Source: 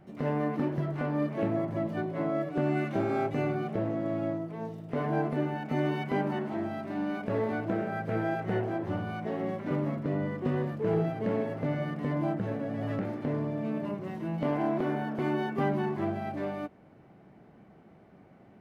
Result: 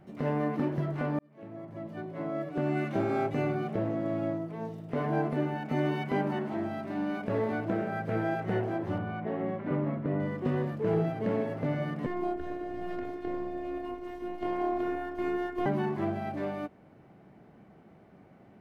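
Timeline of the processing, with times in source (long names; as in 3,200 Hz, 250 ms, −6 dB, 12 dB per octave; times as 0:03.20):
0:01.19–0:02.97: fade in linear
0:08.98–0:10.20: low-pass filter 2,500 Hz
0:12.06–0:15.66: phases set to zero 357 Hz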